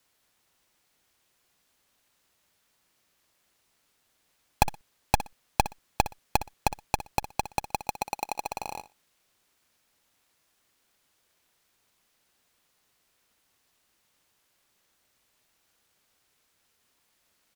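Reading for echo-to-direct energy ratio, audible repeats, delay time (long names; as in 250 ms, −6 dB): −14.0 dB, 2, 61 ms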